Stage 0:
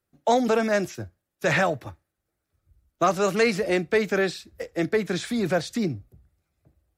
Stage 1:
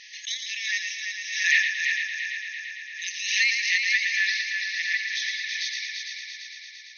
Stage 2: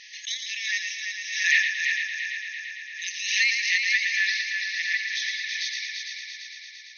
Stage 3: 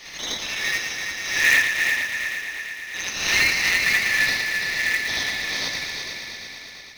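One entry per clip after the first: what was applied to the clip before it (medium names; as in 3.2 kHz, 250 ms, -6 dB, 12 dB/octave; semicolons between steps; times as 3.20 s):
multi-head delay 113 ms, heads first and third, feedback 72%, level -6.5 dB; FFT band-pass 1.7–6.5 kHz; swell ahead of each attack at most 62 dB/s; trim +5 dB
no audible change
in parallel at -8 dB: sample-rate reducer 4.2 kHz, jitter 20%; on the sum: reverse echo 78 ms -3 dB; trim +1.5 dB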